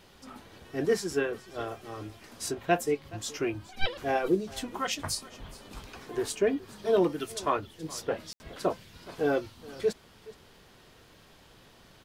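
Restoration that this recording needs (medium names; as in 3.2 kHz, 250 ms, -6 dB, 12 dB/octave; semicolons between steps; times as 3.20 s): de-click; room tone fill 8.33–8.40 s; inverse comb 422 ms -20 dB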